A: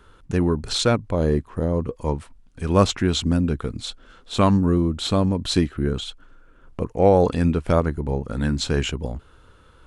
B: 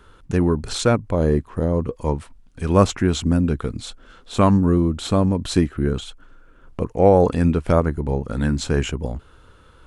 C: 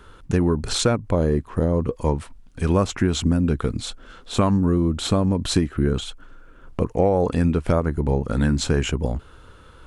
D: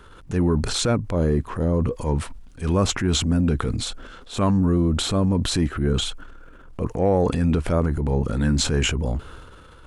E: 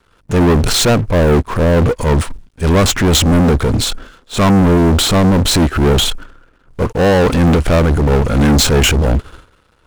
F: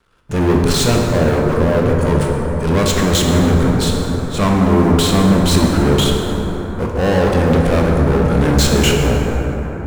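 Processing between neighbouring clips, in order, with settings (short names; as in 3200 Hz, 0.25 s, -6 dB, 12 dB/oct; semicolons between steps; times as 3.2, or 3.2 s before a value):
dynamic EQ 3800 Hz, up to -7 dB, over -42 dBFS, Q 1.2; gain +2 dB
compressor 6:1, threshold -18 dBFS, peak gain reduction 9.5 dB; gain +3 dB
transient shaper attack -7 dB, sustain +7 dB
sample leveller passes 5; upward expander 2.5:1, over -27 dBFS; gain +2 dB
reverb RT60 5.1 s, pre-delay 8 ms, DRR -1 dB; gain -5.5 dB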